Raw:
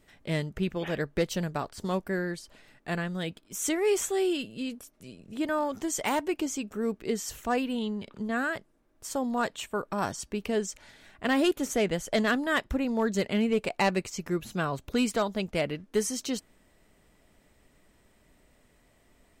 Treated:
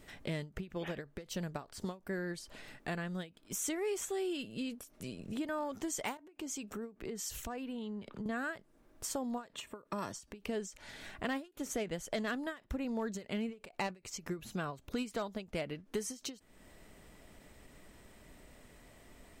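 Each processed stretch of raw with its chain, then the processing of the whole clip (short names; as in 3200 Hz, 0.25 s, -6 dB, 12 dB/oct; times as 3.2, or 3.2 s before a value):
6.17–8.26 compressor 4:1, threshold -40 dBFS + three-band expander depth 70%
9.53–10.13 notch comb 760 Hz + three-band squash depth 40%
whole clip: compressor 3:1, threshold -45 dBFS; ending taper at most 220 dB/s; gain +5.5 dB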